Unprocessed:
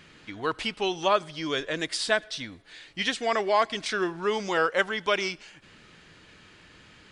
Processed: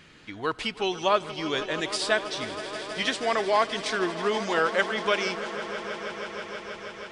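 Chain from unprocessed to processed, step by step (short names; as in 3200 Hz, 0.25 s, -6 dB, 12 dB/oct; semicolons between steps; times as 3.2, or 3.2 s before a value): swelling echo 0.16 s, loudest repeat 5, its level -16 dB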